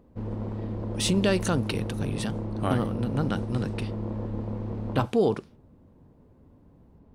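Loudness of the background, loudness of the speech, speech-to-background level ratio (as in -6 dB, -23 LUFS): -33.5 LUFS, -28.5 LUFS, 5.0 dB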